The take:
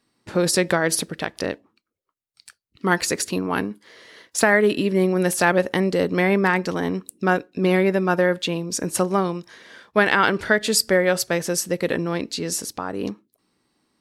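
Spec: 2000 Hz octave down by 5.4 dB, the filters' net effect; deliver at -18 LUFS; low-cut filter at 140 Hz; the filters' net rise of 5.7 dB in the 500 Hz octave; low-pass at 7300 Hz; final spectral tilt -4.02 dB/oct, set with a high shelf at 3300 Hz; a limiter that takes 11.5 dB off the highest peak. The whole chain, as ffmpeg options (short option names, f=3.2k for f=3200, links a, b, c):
-af "highpass=140,lowpass=7.3k,equalizer=f=500:t=o:g=7.5,equalizer=f=2k:t=o:g=-9,highshelf=f=3.3k:g=5.5,volume=5dB,alimiter=limit=-7dB:level=0:latency=1"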